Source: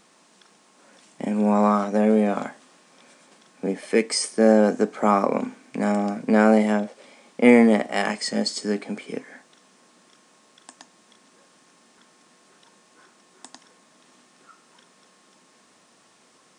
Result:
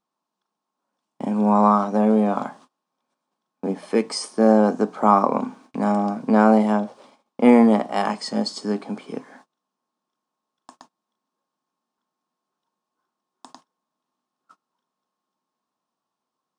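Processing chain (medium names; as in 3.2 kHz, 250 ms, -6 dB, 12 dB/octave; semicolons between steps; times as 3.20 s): hum notches 60/120/180 Hz; gate -48 dBFS, range -27 dB; ten-band graphic EQ 500 Hz -4 dB, 1 kHz +8 dB, 2 kHz -11 dB, 8 kHz -9 dB; trim +2 dB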